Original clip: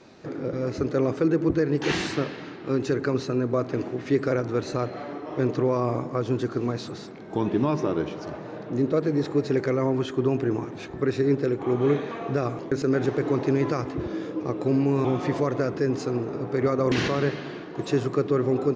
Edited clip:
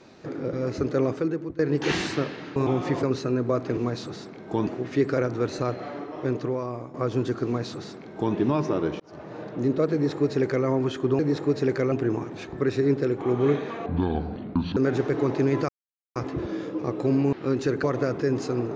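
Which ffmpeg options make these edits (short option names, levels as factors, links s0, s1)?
-filter_complex "[0:a]asplit=15[s0][s1][s2][s3][s4][s5][s6][s7][s8][s9][s10][s11][s12][s13][s14];[s0]atrim=end=1.59,asetpts=PTS-STARTPTS,afade=t=out:st=1.03:d=0.56:silence=0.0891251[s15];[s1]atrim=start=1.59:end=2.562,asetpts=PTS-STARTPTS,afade=t=in:d=0.004:c=hsin:silence=0.0891251[s16];[s2]atrim=start=14.938:end=15.412[s17];[s3]atrim=start=3.068:end=3.812[s18];[s4]atrim=start=6.588:end=7.492[s19];[s5]atrim=start=3.808:end=6.08,asetpts=PTS-STARTPTS,afade=t=out:st=1.342:d=0.93:silence=0.223872[s20];[s6]atrim=start=6.08:end=8.14,asetpts=PTS-STARTPTS,afade=t=in:d=0.004:c=hsin:silence=0.223872,afade=t=out:st=2.056:d=0.004:c=hsin[s21];[s7]atrim=start=8.14:end=10.332,asetpts=PTS-STARTPTS,afade=t=in:d=0.37[s22];[s8]atrim=start=9.068:end=9.802[s23];[s9]atrim=start=10.328:end=12.274[s24];[s10]atrim=start=12.27:end=12.85,asetpts=PTS-STARTPTS,asetrate=28224,aresample=44100[s25];[s11]atrim=start=12.846:end=13.77,asetpts=PTS-STARTPTS,afade=t=out:st=0.92:d=0.004:c=hsin,apad=pad_dur=0.47[s26];[s12]atrim=start=13.77:end=14.942,asetpts=PTS-STARTPTS,afade=t=in:d=0.004:c=hsin[s27];[s13]atrim=start=2.558:end=3.072[s28];[s14]atrim=start=15.408[s29];[s15][s16]concat=n=2:v=0:a=1[s30];[s30][s17]acrossfade=d=0.004:c1=hsin:c2=hsin[s31];[s31][s18]acrossfade=d=0.004:c1=hsin:c2=hsin[s32];[s32][s19]acrossfade=d=0.004:c1=hsin:c2=hsin[s33];[s20][s21][s22]concat=n=3:v=0:a=1[s34];[s33][s34]acrossfade=d=0.004:c1=hsin:c2=hsin[s35];[s35][s23]acrossfade=d=0.004:c1=hsin:c2=hsin[s36];[s36][s24]acrossfade=d=0.004:c1=hsin:c2=hsin[s37];[s37][s25]acrossfade=d=0.004:c1=hsin:c2=hsin[s38];[s26][s27]concat=n=2:v=0:a=1[s39];[s38][s39]acrossfade=d=0.004:c1=hsin:c2=hsin[s40];[s40][s28]acrossfade=d=0.004:c1=hsin:c2=hsin[s41];[s41][s29]acrossfade=d=0.004:c1=hsin:c2=hsin"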